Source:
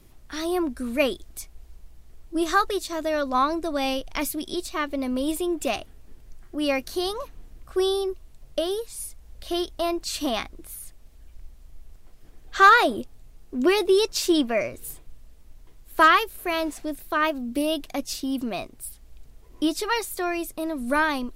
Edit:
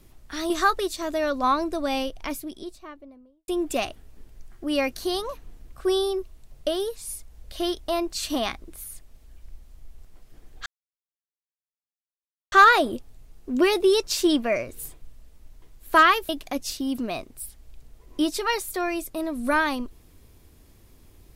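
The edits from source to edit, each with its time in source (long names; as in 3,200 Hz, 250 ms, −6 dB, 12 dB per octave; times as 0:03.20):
0:00.50–0:02.41: remove
0:03.60–0:05.39: fade out and dull
0:12.57: splice in silence 1.86 s
0:16.34–0:17.72: remove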